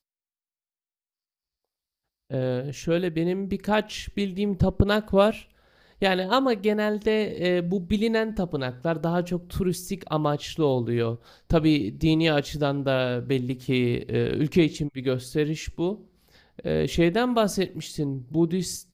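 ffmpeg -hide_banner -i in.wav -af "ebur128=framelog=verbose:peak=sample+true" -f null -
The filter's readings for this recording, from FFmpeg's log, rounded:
Integrated loudness:
  I:         -25.3 LUFS
  Threshold: -35.5 LUFS
Loudness range:
  LRA:         4.0 LU
  Threshold: -45.7 LUFS
  LRA low:   -28.3 LUFS
  LRA high:  -24.2 LUFS
Sample peak:
  Peak:       -6.2 dBFS
True peak:
  Peak:       -6.2 dBFS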